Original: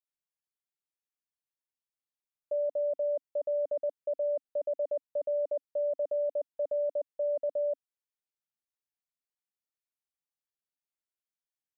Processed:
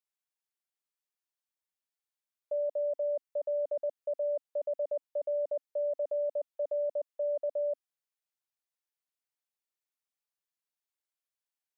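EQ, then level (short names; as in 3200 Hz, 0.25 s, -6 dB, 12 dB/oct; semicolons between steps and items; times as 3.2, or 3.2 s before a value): HPF 450 Hz 12 dB/oct; 0.0 dB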